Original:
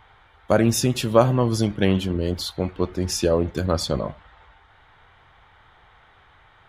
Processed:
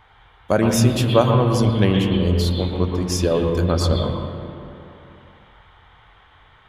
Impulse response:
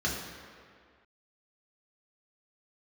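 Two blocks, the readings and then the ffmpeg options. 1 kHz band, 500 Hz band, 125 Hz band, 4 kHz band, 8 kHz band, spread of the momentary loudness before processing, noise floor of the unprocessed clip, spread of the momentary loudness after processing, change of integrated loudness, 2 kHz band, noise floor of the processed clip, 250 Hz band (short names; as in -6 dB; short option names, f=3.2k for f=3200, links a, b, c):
+2.5 dB, +2.0 dB, +5.5 dB, +2.5 dB, 0.0 dB, 8 LU, -55 dBFS, 11 LU, +3.0 dB, +2.0 dB, -52 dBFS, +3.0 dB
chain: -filter_complex "[0:a]asplit=2[a][b];[b]highshelf=f=4.4k:t=q:w=3:g=-10[c];[1:a]atrim=start_sample=2205,asetrate=29547,aresample=44100,adelay=114[d];[c][d]afir=irnorm=-1:irlink=0,volume=-14.5dB[e];[a][e]amix=inputs=2:normalize=0"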